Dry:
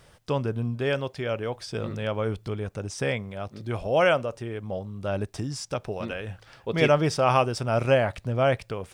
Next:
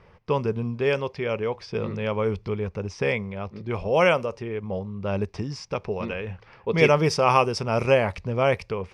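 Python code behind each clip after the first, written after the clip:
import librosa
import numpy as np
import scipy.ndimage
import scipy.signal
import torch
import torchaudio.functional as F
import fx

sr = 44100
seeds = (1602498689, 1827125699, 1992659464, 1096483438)

y = fx.env_lowpass(x, sr, base_hz=2200.0, full_db=-18.0)
y = fx.ripple_eq(y, sr, per_octave=0.83, db=7)
y = F.gain(torch.from_numpy(y), 2.0).numpy()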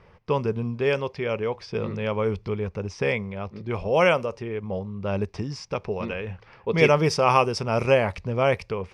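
y = x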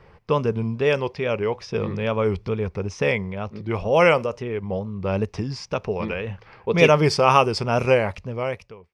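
y = fx.fade_out_tail(x, sr, length_s=1.23)
y = fx.wow_flutter(y, sr, seeds[0], rate_hz=2.1, depth_cents=89.0)
y = F.gain(torch.from_numpy(y), 3.0).numpy()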